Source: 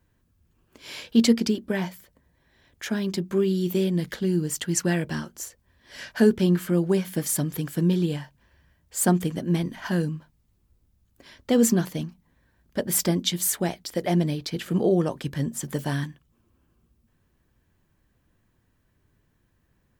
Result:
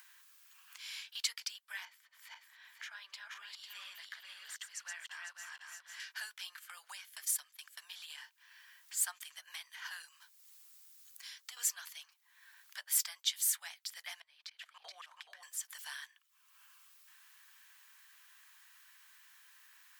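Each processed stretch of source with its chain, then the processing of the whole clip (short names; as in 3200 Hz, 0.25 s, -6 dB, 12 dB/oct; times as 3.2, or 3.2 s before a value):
1.85–6 regenerating reverse delay 0.249 s, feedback 49%, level -2.5 dB + LPF 1400 Hz 6 dB/oct
6.57–8.18 gate -34 dBFS, range -11 dB + transient shaper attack +7 dB, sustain -7 dB + compressor 2.5:1, threshold -22 dBFS
10.08–11.57 tone controls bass -8 dB, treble +8 dB + compressor 10:1, threshold -33 dBFS
14.2–15.43 LPF 1900 Hz 6 dB/oct + level quantiser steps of 22 dB + echo 0.425 s -5.5 dB
whole clip: Bessel high-pass 1800 Hz, order 8; upward compressor, threshold -35 dBFS; gain -6.5 dB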